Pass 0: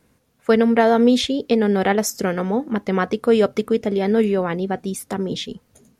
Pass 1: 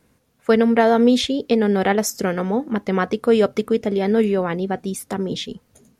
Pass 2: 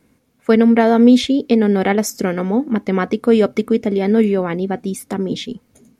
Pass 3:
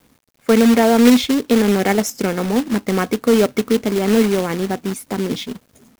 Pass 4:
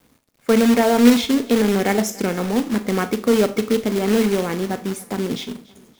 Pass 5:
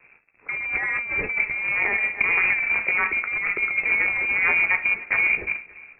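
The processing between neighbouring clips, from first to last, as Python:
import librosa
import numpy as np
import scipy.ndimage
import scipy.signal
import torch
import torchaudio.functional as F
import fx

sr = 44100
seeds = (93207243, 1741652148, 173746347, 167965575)

y1 = x
y2 = fx.small_body(y1, sr, hz=(260.0, 2200.0), ring_ms=20, db=7)
y3 = fx.quant_companded(y2, sr, bits=4)
y3 = F.gain(torch.from_numpy(y3), -1.0).numpy()
y4 = fx.echo_feedback(y3, sr, ms=287, feedback_pct=44, wet_db=-22)
y4 = fx.rev_schroeder(y4, sr, rt60_s=0.33, comb_ms=26, drr_db=10.5)
y4 = F.gain(torch.from_numpy(y4), -2.5).numpy()
y5 = fx.chorus_voices(y4, sr, voices=6, hz=0.4, base_ms=15, depth_ms=4.0, mix_pct=25)
y5 = fx.over_compress(y5, sr, threshold_db=-25.0, ratio=-1.0)
y5 = fx.freq_invert(y5, sr, carrier_hz=2600)
y5 = F.gain(torch.from_numpy(y5), 2.0).numpy()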